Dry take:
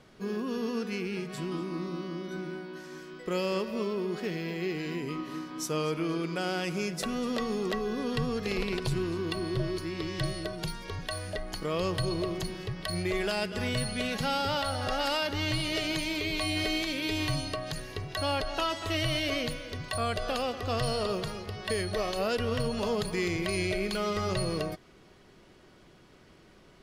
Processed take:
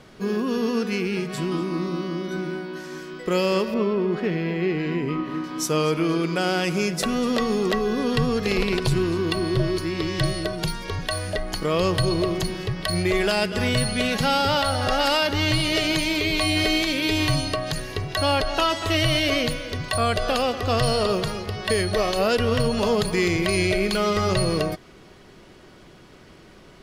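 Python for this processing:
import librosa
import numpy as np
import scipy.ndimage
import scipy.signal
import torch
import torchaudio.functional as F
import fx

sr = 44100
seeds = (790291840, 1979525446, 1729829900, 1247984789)

y = fx.bass_treble(x, sr, bass_db=2, treble_db=-15, at=(3.74, 5.44))
y = y * 10.0 ** (8.5 / 20.0)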